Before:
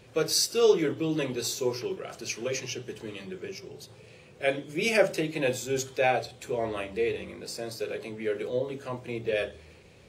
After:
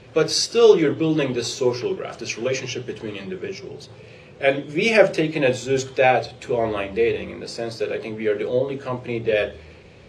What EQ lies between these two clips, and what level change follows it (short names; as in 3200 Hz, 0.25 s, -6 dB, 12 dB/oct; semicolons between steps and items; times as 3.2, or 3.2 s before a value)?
air absorption 71 m; high shelf 12000 Hz -9 dB; +8.5 dB